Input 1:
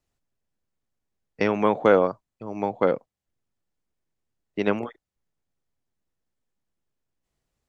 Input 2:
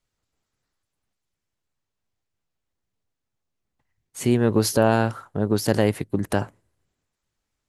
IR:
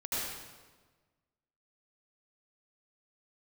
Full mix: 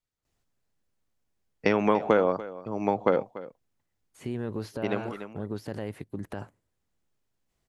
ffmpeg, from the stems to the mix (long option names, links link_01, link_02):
-filter_complex "[0:a]acompressor=threshold=-20dB:ratio=4,adelay=250,volume=2dB,asplit=2[link_01][link_02];[link_02]volume=-16.5dB[link_03];[1:a]acrossover=split=3400[link_04][link_05];[link_05]acompressor=threshold=-44dB:ratio=4:attack=1:release=60[link_06];[link_04][link_06]amix=inputs=2:normalize=0,alimiter=limit=-12.5dB:level=0:latency=1:release=49,volume=-10.5dB,asplit=2[link_07][link_08];[link_08]apad=whole_len=350005[link_09];[link_01][link_09]sidechaincompress=threshold=-34dB:ratio=8:attack=41:release=817[link_10];[link_03]aecho=0:1:290:1[link_11];[link_10][link_07][link_11]amix=inputs=3:normalize=0"